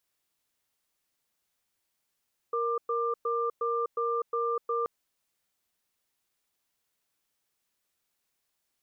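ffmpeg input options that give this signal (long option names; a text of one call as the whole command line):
ffmpeg -f lavfi -i "aevalsrc='0.0355*(sin(2*PI*467*t)+sin(2*PI*1190*t))*clip(min(mod(t,0.36),0.25-mod(t,0.36))/0.005,0,1)':duration=2.33:sample_rate=44100" out.wav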